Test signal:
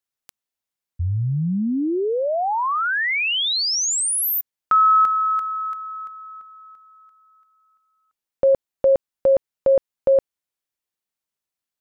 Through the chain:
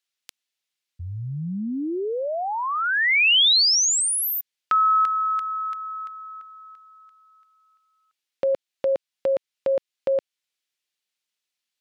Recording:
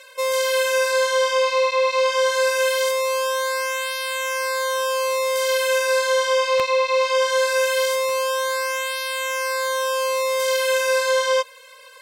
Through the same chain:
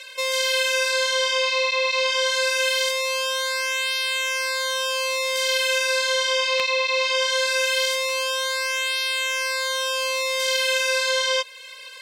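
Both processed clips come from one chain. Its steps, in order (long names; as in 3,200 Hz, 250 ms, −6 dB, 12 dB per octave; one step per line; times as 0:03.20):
meter weighting curve D
in parallel at −2 dB: downward compressor, threshold −26 dBFS
on the sum: level −7.5 dB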